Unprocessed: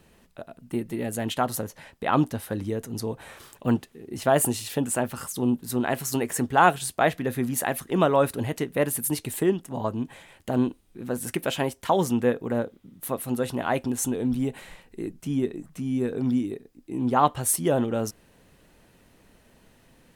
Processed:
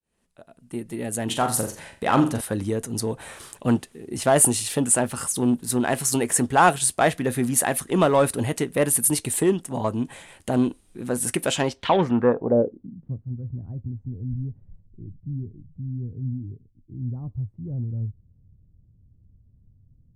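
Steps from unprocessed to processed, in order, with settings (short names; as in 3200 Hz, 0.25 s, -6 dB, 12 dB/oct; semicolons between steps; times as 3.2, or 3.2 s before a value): opening faded in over 1.62 s; 1.25–2.41 flutter echo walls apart 7.3 m, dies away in 0.35 s; in parallel at -6 dB: overloaded stage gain 22 dB; on the sum: low-pass sweep 9600 Hz -> 100 Hz, 11.46–13.22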